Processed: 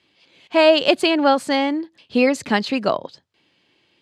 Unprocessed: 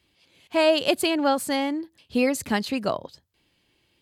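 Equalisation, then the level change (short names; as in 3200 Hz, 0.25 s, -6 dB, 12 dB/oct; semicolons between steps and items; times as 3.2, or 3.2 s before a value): BPF 130–5200 Hz; low shelf 180 Hz -4.5 dB; +6.5 dB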